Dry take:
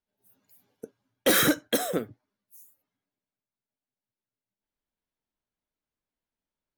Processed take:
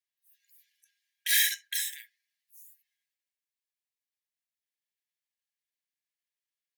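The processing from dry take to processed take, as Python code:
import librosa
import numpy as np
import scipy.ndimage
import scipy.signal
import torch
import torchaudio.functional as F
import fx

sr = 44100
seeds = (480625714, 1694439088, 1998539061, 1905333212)

y = fx.transient(x, sr, attack_db=-5, sustain_db=6)
y = fx.brickwall_highpass(y, sr, low_hz=1600.0)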